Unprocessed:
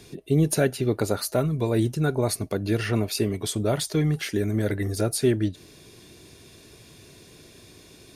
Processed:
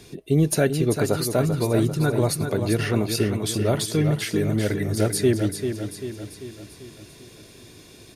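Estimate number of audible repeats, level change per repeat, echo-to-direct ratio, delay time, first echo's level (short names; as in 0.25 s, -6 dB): 5, -5.5 dB, -6.0 dB, 0.392 s, -7.5 dB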